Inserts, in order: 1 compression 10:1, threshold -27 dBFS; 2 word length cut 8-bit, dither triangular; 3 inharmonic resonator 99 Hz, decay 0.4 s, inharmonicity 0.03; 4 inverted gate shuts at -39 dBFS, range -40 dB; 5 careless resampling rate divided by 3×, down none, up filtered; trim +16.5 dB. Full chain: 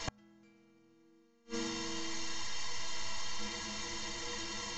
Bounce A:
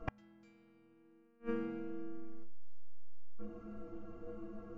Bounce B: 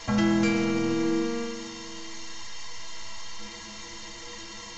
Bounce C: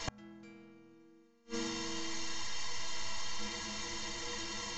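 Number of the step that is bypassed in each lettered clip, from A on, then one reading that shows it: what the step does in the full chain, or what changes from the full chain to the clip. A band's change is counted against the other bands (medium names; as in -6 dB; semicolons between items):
2, distortion -12 dB; 4, momentary loudness spread change +14 LU; 1, mean gain reduction 2.0 dB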